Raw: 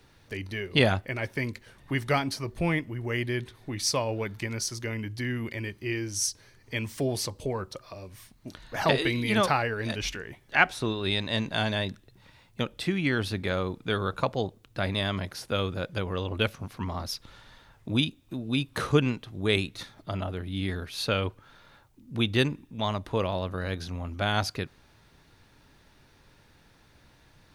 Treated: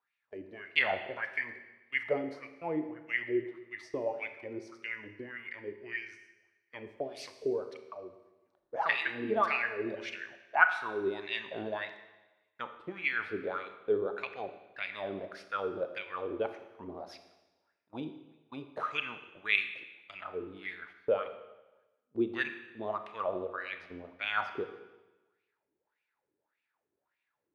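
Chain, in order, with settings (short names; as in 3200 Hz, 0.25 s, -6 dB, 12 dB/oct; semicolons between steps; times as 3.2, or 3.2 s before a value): wah 1.7 Hz 350–2500 Hz, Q 5.9; gate -57 dBFS, range -18 dB; Schroeder reverb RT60 1.1 s, combs from 26 ms, DRR 8.5 dB; gain +5.5 dB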